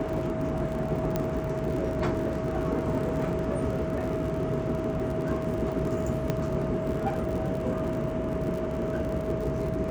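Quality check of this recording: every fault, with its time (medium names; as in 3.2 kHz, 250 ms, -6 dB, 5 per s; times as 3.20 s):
crackle 65 per s -34 dBFS
whine 640 Hz -33 dBFS
1.16 s: pop -14 dBFS
6.30 s: pop -14 dBFS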